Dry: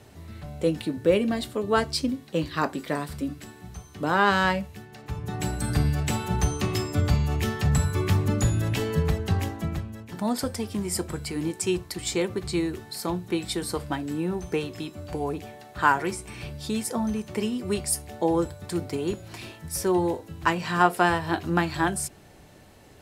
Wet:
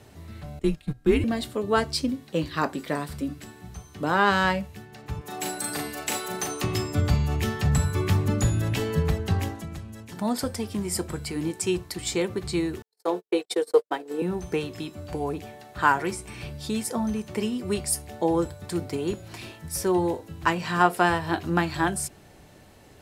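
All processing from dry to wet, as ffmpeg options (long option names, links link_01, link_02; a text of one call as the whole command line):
ffmpeg -i in.wav -filter_complex "[0:a]asettb=1/sr,asplit=3[link_01][link_02][link_03];[link_01]atrim=end=0.594[link_04];[link_02]atrim=start=0.59:end=1.24,asetpts=PTS-STARTPTS,afade=type=in:duration=0.004:curve=qsin,afade=type=out:start_time=0.646:duration=0.004:curve=qsin,agate=range=-16dB:threshold=-29dB:ratio=16:release=100:detection=peak,afreqshift=-140[link_05];[link_03]atrim=start=1.236[link_06];[link_04][link_05]acrossfade=duration=0.004:curve1=hsin:curve2=qsin[link_07];[link_07][link_06]acrossfade=duration=0.004:curve1=qsin:curve2=hsin,asettb=1/sr,asplit=3[link_08][link_09][link_10];[link_08]atrim=end=5.214[link_11];[link_09]atrim=start=5.21:end=6.64,asetpts=PTS-STARTPTS,afade=type=in:duration=0.004:curve=qsin,afade=type=out:start_time=1.426:duration=0.004:curve=qsin,highpass=370,highshelf=frequency=8700:gain=9,asplit=2[link_12][link_13];[link_13]adelay=38,volume=-3.5dB[link_14];[link_12][link_14]amix=inputs=2:normalize=0,atrim=end_sample=63063[link_15];[link_10]atrim=start=6.636[link_16];[link_11][link_15]acrossfade=duration=0.004:curve1=hsin:curve2=qsin[link_17];[link_17][link_16]acrossfade=duration=0.004:curve1=qsin:curve2=hsin,asettb=1/sr,asplit=3[link_18][link_19][link_20];[link_18]atrim=end=9.554[link_21];[link_19]atrim=start=9.55:end=10.17,asetpts=PTS-STARTPTS,afade=type=in:duration=0.004:curve=qsin,afade=type=out:start_time=0.616:duration=0.004:curve=qsin,aemphasis=mode=production:type=50fm,acompressor=threshold=-37dB:ratio=2:attack=3.2:release=140:knee=1:detection=peak,lowpass=8900[link_22];[link_20]atrim=start=10.166[link_23];[link_21][link_22]acrossfade=duration=0.004:curve1=hsin:curve2=qsin[link_24];[link_24][link_23]acrossfade=duration=0.004:curve1=qsin:curve2=hsin,asettb=1/sr,asplit=3[link_25][link_26][link_27];[link_25]atrim=end=12.824[link_28];[link_26]atrim=start=12.82:end=14.22,asetpts=PTS-STARTPTS,afade=type=in:duration=0.004:curve=qsin,afade=type=out:start_time=1.396:duration=0.004:curve=qsin,agate=range=-58dB:threshold=-31dB:ratio=16:release=100:detection=peak,highpass=frequency=460:width_type=q:width=5.7,bandreject=frequency=580:width=9.2[link_29];[link_27]atrim=start=14.216[link_30];[link_28][link_29]acrossfade=duration=0.004:curve1=hsin:curve2=qsin[link_31];[link_31][link_30]acrossfade=duration=0.004:curve1=qsin:curve2=hsin" out.wav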